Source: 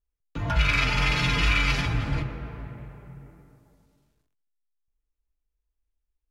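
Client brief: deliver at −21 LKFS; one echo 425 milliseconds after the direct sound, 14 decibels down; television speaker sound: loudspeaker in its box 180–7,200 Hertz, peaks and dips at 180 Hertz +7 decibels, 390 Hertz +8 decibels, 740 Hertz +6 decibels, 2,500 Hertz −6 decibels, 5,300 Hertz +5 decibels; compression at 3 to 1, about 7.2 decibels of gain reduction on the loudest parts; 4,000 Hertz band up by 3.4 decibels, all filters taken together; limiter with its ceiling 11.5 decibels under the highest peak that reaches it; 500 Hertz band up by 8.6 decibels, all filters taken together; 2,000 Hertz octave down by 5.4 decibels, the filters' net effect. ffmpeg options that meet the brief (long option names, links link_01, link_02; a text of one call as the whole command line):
ffmpeg -i in.wav -af "equalizer=frequency=500:width_type=o:gain=6,equalizer=frequency=2000:width_type=o:gain=-5.5,equalizer=frequency=4000:width_type=o:gain=6.5,acompressor=threshold=-27dB:ratio=3,alimiter=level_in=4dB:limit=-24dB:level=0:latency=1,volume=-4dB,highpass=frequency=180:width=0.5412,highpass=frequency=180:width=1.3066,equalizer=frequency=180:width_type=q:width=4:gain=7,equalizer=frequency=390:width_type=q:width=4:gain=8,equalizer=frequency=740:width_type=q:width=4:gain=6,equalizer=frequency=2500:width_type=q:width=4:gain=-6,equalizer=frequency=5300:width_type=q:width=4:gain=5,lowpass=frequency=7200:width=0.5412,lowpass=frequency=7200:width=1.3066,aecho=1:1:425:0.2,volume=17.5dB" out.wav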